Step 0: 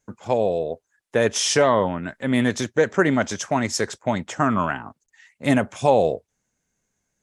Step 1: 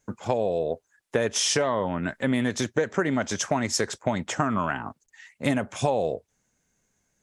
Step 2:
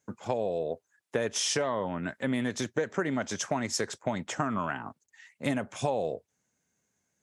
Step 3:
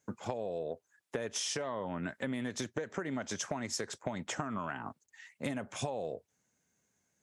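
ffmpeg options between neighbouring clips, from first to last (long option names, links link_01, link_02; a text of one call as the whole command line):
ffmpeg -i in.wav -af "acompressor=threshold=-24dB:ratio=6,volume=3dB" out.wav
ffmpeg -i in.wav -af "highpass=93,volume=-5dB" out.wav
ffmpeg -i in.wav -af "acompressor=threshold=-33dB:ratio=6" out.wav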